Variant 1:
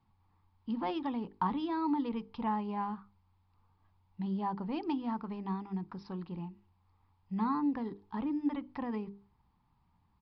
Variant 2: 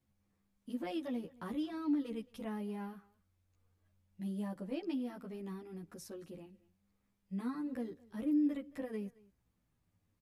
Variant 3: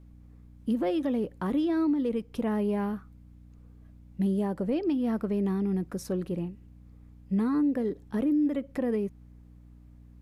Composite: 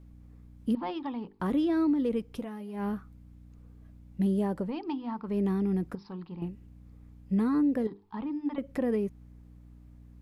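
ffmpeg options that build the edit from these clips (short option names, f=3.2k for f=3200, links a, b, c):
-filter_complex "[0:a]asplit=4[a][b][c][d];[2:a]asplit=6[e][f][g][h][i][j];[e]atrim=end=0.752[k];[a]atrim=start=0.748:end=1.402[l];[f]atrim=start=1.398:end=2.48[m];[1:a]atrim=start=2.32:end=2.88[n];[g]atrim=start=2.72:end=4.74[o];[b]atrim=start=4.58:end=5.38[p];[h]atrim=start=5.22:end=5.952[q];[c]atrim=start=5.948:end=6.422[r];[i]atrim=start=6.418:end=7.872[s];[d]atrim=start=7.868:end=8.582[t];[j]atrim=start=8.578[u];[k][l]acrossfade=d=0.004:c1=hsin:c2=hsin[v];[v][m]acrossfade=d=0.004:c1=hsin:c2=hsin[w];[w][n]acrossfade=d=0.16:c1=tri:c2=tri[x];[x][o]acrossfade=d=0.16:c1=tri:c2=tri[y];[y][p]acrossfade=d=0.16:c1=tri:c2=tri[z];[z][q]acrossfade=d=0.16:c1=tri:c2=tri[aa];[aa][r]acrossfade=d=0.004:c1=hsin:c2=hsin[ab];[ab][s]acrossfade=d=0.004:c1=hsin:c2=hsin[ac];[ac][t]acrossfade=d=0.004:c1=hsin:c2=hsin[ad];[ad][u]acrossfade=d=0.004:c1=hsin:c2=hsin"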